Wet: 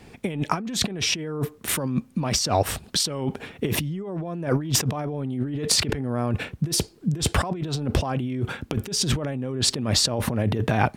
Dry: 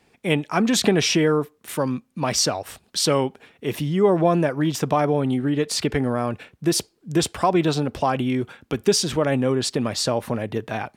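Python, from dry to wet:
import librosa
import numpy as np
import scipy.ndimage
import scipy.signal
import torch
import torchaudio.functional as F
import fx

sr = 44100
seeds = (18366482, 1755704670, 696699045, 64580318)

y = fx.low_shelf(x, sr, hz=250.0, db=10.0)
y = fx.over_compress(y, sr, threshold_db=-27.0, ratio=-1.0)
y = y * librosa.db_to_amplitude(1.0)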